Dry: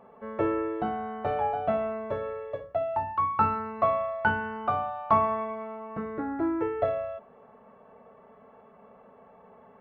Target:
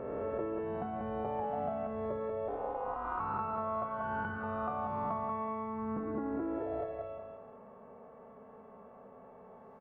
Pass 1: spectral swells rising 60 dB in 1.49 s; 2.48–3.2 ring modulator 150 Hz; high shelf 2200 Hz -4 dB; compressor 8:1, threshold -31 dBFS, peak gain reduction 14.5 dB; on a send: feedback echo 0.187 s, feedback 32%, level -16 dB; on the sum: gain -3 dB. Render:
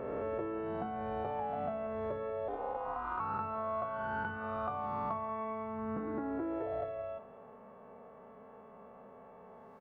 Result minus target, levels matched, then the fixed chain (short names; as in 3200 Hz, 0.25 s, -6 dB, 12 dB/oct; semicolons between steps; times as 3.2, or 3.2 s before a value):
echo-to-direct -10.5 dB; 4000 Hz band +4.5 dB
spectral swells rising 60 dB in 1.49 s; 2.48–3.2 ring modulator 150 Hz; high shelf 2200 Hz -12.5 dB; compressor 8:1, threshold -31 dBFS, peak gain reduction 13.5 dB; on a send: feedback echo 0.187 s, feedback 32%, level -5.5 dB; on the sum: gain -3 dB